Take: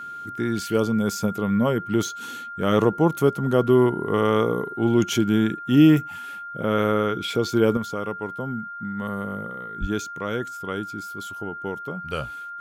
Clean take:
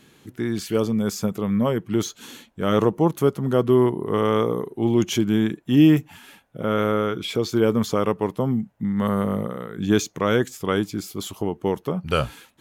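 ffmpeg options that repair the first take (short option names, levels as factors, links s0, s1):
-filter_complex "[0:a]bandreject=f=1400:w=30,asplit=3[s0][s1][s2];[s0]afade=t=out:st=9.8:d=0.02[s3];[s1]highpass=f=140:w=0.5412,highpass=f=140:w=1.3066,afade=t=in:st=9.8:d=0.02,afade=t=out:st=9.92:d=0.02[s4];[s2]afade=t=in:st=9.92:d=0.02[s5];[s3][s4][s5]amix=inputs=3:normalize=0,asetnsamples=n=441:p=0,asendcmd='7.77 volume volume 8dB',volume=1"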